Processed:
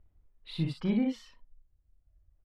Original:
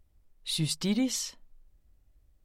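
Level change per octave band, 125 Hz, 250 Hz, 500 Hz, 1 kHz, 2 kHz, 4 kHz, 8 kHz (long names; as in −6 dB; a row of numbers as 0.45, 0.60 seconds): 0.0 dB, 0.0 dB, 0.0 dB, 0.0 dB, −5.0 dB, −12.5 dB, below −25 dB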